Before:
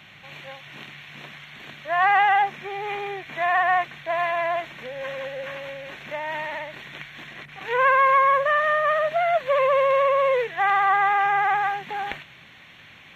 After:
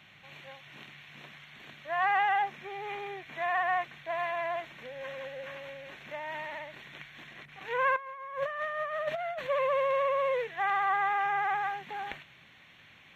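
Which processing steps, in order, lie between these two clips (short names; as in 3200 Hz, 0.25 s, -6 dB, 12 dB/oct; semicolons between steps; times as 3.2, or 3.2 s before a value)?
7.96–9.47 negative-ratio compressor -25 dBFS, ratio -0.5; gain -8.5 dB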